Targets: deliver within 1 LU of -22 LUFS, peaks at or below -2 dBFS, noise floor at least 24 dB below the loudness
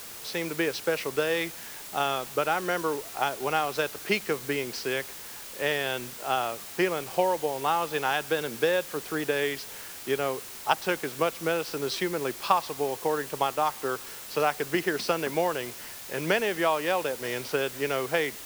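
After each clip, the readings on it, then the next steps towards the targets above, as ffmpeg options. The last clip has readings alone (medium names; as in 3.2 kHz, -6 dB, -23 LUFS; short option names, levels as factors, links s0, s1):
noise floor -42 dBFS; noise floor target -53 dBFS; loudness -28.5 LUFS; peak level -6.5 dBFS; loudness target -22.0 LUFS
-> -af "afftdn=nr=11:nf=-42"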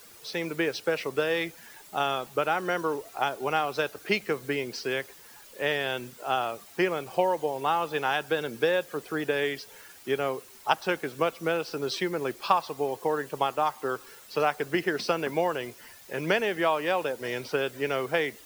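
noise floor -51 dBFS; noise floor target -53 dBFS
-> -af "afftdn=nr=6:nf=-51"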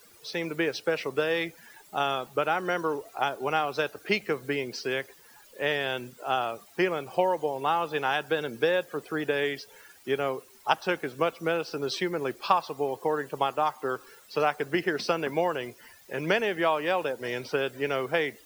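noise floor -55 dBFS; loudness -29.0 LUFS; peak level -6.5 dBFS; loudness target -22.0 LUFS
-> -af "volume=2.24,alimiter=limit=0.794:level=0:latency=1"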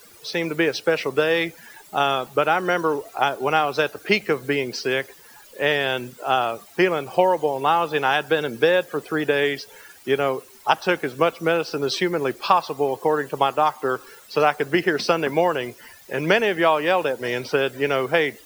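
loudness -22.0 LUFS; peak level -2.0 dBFS; noise floor -48 dBFS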